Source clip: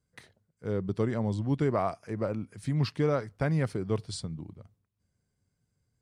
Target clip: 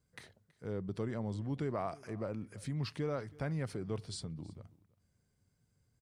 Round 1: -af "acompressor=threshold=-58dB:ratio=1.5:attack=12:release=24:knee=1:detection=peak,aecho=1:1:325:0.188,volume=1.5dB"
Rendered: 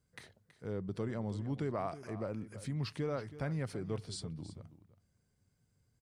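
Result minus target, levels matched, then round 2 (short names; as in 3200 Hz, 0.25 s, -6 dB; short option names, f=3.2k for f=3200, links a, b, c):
echo-to-direct +7.5 dB
-af "acompressor=threshold=-58dB:ratio=1.5:attack=12:release=24:knee=1:detection=peak,aecho=1:1:325:0.0794,volume=1.5dB"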